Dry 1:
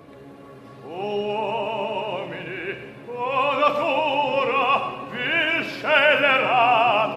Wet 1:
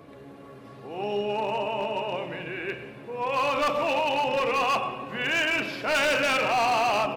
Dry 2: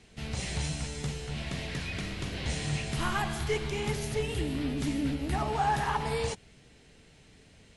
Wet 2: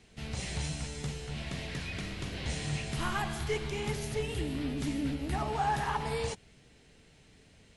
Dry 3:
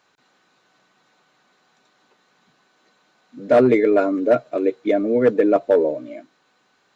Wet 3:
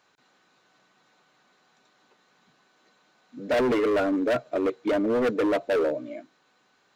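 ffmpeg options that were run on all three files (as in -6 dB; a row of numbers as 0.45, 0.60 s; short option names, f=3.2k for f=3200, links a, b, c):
-af "volume=18dB,asoftclip=hard,volume=-18dB,volume=-2.5dB"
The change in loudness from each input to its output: -4.5, -2.5, -7.0 LU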